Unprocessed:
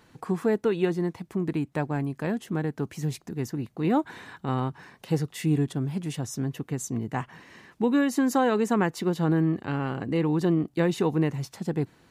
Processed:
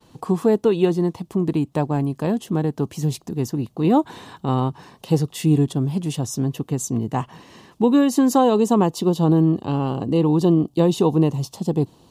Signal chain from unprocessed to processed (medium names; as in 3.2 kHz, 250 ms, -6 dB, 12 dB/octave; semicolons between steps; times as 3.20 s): expander -57 dBFS; high-order bell 1.8 kHz -9.5 dB 1 oct, from 8.41 s -16 dB; trim +7 dB